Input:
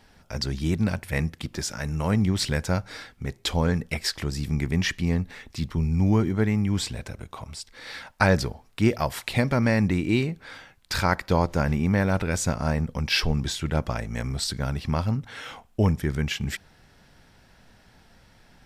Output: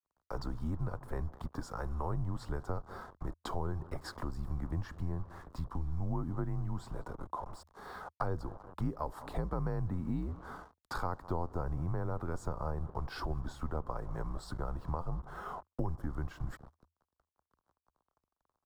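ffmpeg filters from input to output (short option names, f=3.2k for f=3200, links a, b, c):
-filter_complex "[0:a]bandreject=f=6.1k:w=13,asplit=2[a][b];[b]adelay=194,lowpass=f=2.7k:p=1,volume=-23.5dB,asplit=2[c][d];[d]adelay=194,lowpass=f=2.7k:p=1,volume=0.45,asplit=2[e][f];[f]adelay=194,lowpass=f=2.7k:p=1,volume=0.45[g];[c][e][g]amix=inputs=3:normalize=0[h];[a][h]amix=inputs=2:normalize=0,acrusher=bits=6:mix=0:aa=0.5,acrossover=split=450|3000[i][j][k];[j]acompressor=threshold=-32dB:ratio=2[l];[i][l][k]amix=inputs=3:normalize=0,afreqshift=-83,highshelf=f=1.6k:t=q:w=3:g=-13.5,acompressor=threshold=-32dB:ratio=2.5,adynamicequalizer=threshold=0.002:dfrequency=2200:dqfactor=0.7:tfrequency=2200:tqfactor=0.7:attack=5:release=100:ratio=0.375:range=1.5:mode=cutabove:tftype=highshelf,volume=-3dB"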